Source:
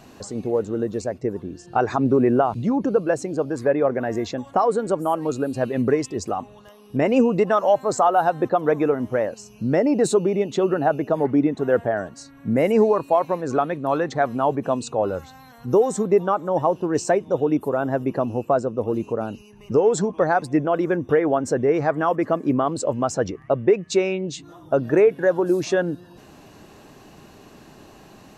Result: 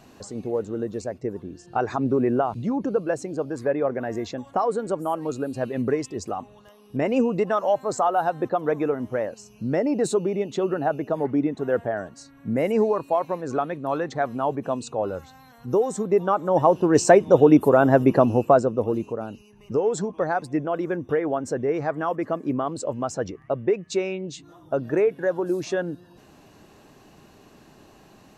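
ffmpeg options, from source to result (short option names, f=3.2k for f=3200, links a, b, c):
-af "volume=6.5dB,afade=t=in:st=16.06:d=1.24:silence=0.298538,afade=t=out:st=18.12:d=1.04:silence=0.266073"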